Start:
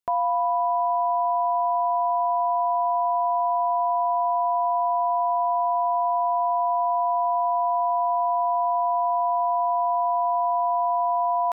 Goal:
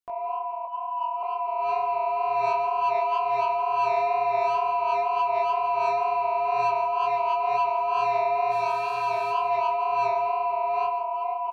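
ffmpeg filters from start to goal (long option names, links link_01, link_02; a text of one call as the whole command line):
ffmpeg -i in.wav -filter_complex "[0:a]asettb=1/sr,asplit=3[link_01][link_02][link_03];[link_01]atrim=end=0.654[link_04];[link_02]atrim=start=0.65:end=1.23,asetpts=PTS-STARTPTS,afade=type=in:duration=0.004:curve=qsin,afade=type=out:start_time=0.576:duration=0.004:curve=qsin,highpass=frequency=900:width=0.5412,highpass=frequency=900:width=1.3066[link_05];[link_03]atrim=start=1.226[link_06];[link_04][link_05]acrossfade=duration=0.004:curve1=hsin:curve2=qsin[link_07];[link_07][link_06]acrossfade=duration=0.004:curve1=qsin:curve2=hsin,acontrast=81,alimiter=limit=-16dB:level=0:latency=1:release=354,dynaudnorm=framelen=460:gausssize=7:maxgain=10dB,asplit=3[link_08][link_09][link_10];[link_08]afade=type=out:start_time=8.5:duration=0.02[link_11];[link_09]asoftclip=type=hard:threshold=-14dB,afade=type=in:start_time=8.5:duration=0.02,afade=type=out:start_time=9.31:duration=0.02[link_12];[link_10]afade=type=in:start_time=9.31:duration=0.02[link_13];[link_11][link_12][link_13]amix=inputs=3:normalize=0,flanger=delay=2.7:depth=4.8:regen=54:speed=0.24:shape=sinusoidal,asoftclip=type=tanh:threshold=-15.5dB,flanger=delay=16:depth=6.7:speed=2.1,aecho=1:1:166:0.251,volume=-3dB" out.wav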